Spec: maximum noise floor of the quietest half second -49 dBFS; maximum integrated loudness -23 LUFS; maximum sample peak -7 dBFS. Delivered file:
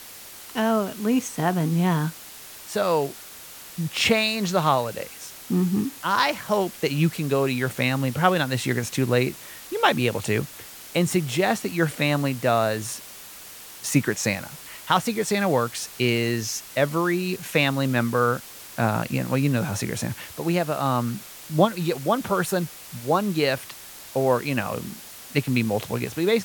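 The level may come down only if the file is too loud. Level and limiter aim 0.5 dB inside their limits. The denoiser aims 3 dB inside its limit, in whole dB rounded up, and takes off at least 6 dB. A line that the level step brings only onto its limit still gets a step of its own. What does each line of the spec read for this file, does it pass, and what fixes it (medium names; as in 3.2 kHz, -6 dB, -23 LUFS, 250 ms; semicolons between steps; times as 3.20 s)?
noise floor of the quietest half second -42 dBFS: fail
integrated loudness -24.0 LUFS: pass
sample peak -5.5 dBFS: fail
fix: noise reduction 10 dB, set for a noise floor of -42 dBFS; peak limiter -7.5 dBFS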